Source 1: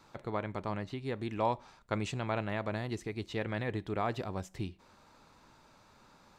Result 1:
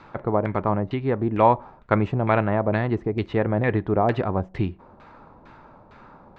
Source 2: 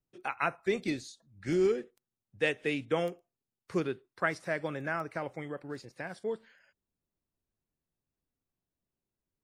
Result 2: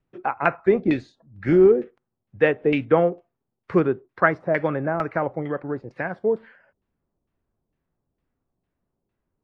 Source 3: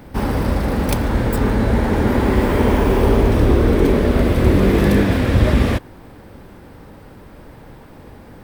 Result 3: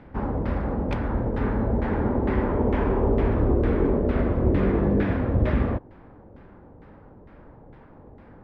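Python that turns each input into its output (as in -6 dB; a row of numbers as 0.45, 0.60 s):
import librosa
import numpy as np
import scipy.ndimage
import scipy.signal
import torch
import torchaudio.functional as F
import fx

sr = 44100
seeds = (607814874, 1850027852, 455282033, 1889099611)

y = fx.filter_lfo_lowpass(x, sr, shape='saw_down', hz=2.2, low_hz=610.0, high_hz=2500.0, q=1.0)
y = y * 10.0 ** (-24 / 20.0) / np.sqrt(np.mean(np.square(y)))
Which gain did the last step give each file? +13.5, +12.0, -7.5 dB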